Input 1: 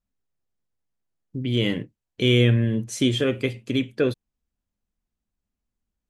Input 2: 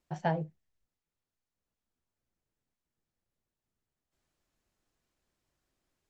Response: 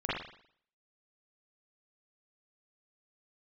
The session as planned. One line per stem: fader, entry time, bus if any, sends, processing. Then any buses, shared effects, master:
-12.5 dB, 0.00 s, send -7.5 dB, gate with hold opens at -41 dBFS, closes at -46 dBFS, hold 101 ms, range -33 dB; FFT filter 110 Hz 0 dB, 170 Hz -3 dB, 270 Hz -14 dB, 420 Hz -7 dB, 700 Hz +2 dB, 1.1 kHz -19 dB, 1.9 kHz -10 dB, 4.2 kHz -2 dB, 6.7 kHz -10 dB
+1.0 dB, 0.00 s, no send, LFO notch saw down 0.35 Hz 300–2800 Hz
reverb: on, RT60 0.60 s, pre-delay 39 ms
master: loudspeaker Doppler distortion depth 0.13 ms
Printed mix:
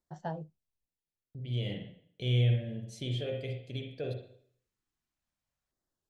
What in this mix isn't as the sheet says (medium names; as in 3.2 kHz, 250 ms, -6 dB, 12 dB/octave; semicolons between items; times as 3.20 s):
stem 2 +1.0 dB -> -7.0 dB; master: missing loudspeaker Doppler distortion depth 0.13 ms